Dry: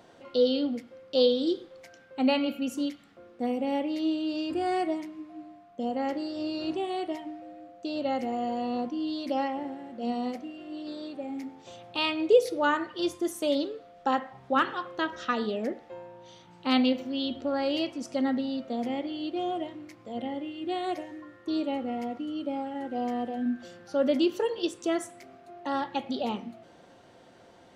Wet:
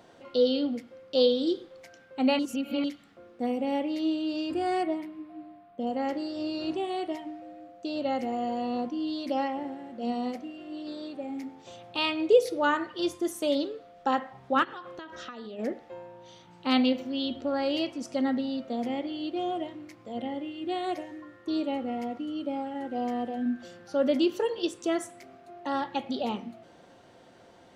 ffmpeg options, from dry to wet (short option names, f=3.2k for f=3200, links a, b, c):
-filter_complex "[0:a]asettb=1/sr,asplit=3[a][b][c];[a]atrim=end=4.834[d];[b]atrim=start=4.83:end=5.87,asetpts=PTS-STARTPTS,afade=t=in:d=0.004:c=qsin,afade=t=out:st=1.036:d=0.004:c=qsin,equalizer=f=6.5k:t=o:w=0.85:g=-12.5[e];[c]atrim=start=5.866[f];[d][e]acrossfade=d=0.004:c1=hsin:c2=qsin[g];[g][f]acrossfade=d=0.004:c1=qsin:c2=hsin,asplit=3[h][i][j];[h]afade=t=out:st=14.63:d=0.02[k];[i]acompressor=threshold=-37dB:ratio=10:attack=3.2:release=140:knee=1:detection=peak,afade=t=in:st=14.63:d=0.02,afade=t=out:st=15.58:d=0.02[l];[j]afade=t=in:st=15.58:d=0.02[m];[k][l][m]amix=inputs=3:normalize=0,asplit=3[n][o][p];[n]atrim=end=2.392[q];[o]atrim=start=2.388:end=2.842,asetpts=PTS-STARTPTS,areverse[r];[p]atrim=start=2.838[s];[q][r]acrossfade=d=0.004:c1=hsin:c2=hsin[t];[t][s]acrossfade=d=0.004:c1=hsin:c2=hsin"